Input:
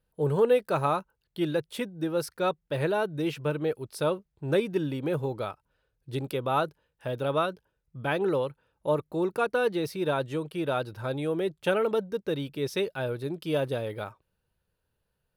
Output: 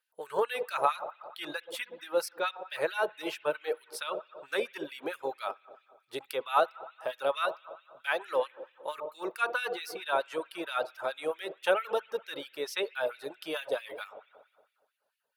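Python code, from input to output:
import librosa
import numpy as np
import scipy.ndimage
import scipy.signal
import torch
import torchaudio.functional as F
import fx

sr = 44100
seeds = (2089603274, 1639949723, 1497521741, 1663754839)

y = fx.low_shelf(x, sr, hz=400.0, db=-10.5, at=(7.48, 8.25))
y = fx.rev_spring(y, sr, rt60_s=1.5, pass_ms=(59,), chirp_ms=50, drr_db=9.0)
y = fx.filter_lfo_highpass(y, sr, shape='sine', hz=4.5, low_hz=560.0, high_hz=2200.0, q=1.4)
y = fx.dereverb_blind(y, sr, rt60_s=0.61)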